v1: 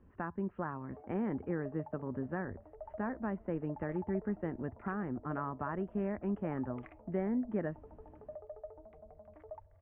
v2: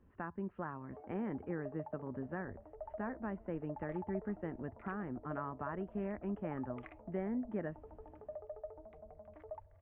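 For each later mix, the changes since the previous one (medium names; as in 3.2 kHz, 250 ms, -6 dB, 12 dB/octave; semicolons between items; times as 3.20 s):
speech -4.5 dB; master: remove distance through air 210 m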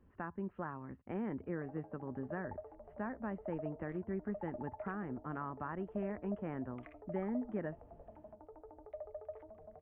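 first sound: entry +0.65 s; second sound -3.5 dB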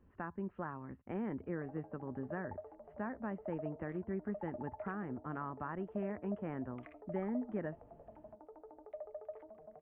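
second sound: add resonant low shelf 140 Hz -11 dB, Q 1.5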